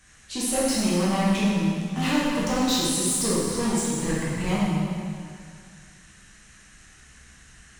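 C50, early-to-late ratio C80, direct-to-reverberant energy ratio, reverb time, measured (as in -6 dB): -3.0 dB, -0.5 dB, -8.0 dB, 2.2 s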